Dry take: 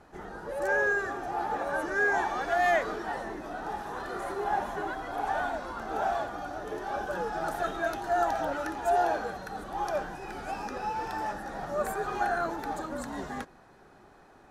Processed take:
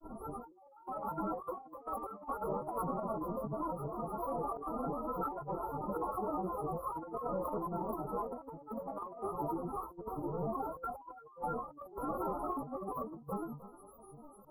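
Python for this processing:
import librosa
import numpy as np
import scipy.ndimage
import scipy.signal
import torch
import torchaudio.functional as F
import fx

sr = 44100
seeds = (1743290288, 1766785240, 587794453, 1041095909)

y = fx.stiff_resonator(x, sr, f0_hz=280.0, decay_s=0.37, stiffness=0.008)
y = y + 10.0 ** (-76.0 / 20.0) * np.sin(2.0 * np.pi * 7500.0 * np.arange(len(y)) / sr)
y = fx.granulator(y, sr, seeds[0], grain_ms=100.0, per_s=20.0, spray_ms=100.0, spread_st=12)
y = fx.brickwall_bandstop(y, sr, low_hz=1400.0, high_hz=10000.0)
y = fx.low_shelf(y, sr, hz=190.0, db=10.0)
y = y + 10.0 ** (-15.5 / 20.0) * np.pad(y, (int(307 * sr / 1000.0), 0))[:len(y)]
y = fx.over_compress(y, sr, threshold_db=-50.0, ratio=-0.5)
y = fx.low_shelf(y, sr, hz=78.0, db=-8.0)
y = fx.end_taper(y, sr, db_per_s=130.0)
y = F.gain(torch.from_numpy(y), 12.0).numpy()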